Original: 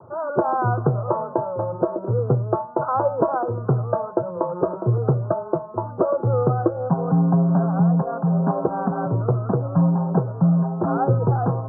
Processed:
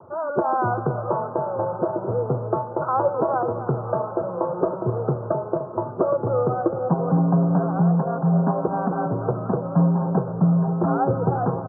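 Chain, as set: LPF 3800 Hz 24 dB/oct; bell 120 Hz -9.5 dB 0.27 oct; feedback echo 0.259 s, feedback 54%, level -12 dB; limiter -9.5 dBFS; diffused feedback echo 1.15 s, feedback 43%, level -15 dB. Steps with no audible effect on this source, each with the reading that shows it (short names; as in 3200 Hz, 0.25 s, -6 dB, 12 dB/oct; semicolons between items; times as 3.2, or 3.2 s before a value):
LPF 3800 Hz: input band ends at 1300 Hz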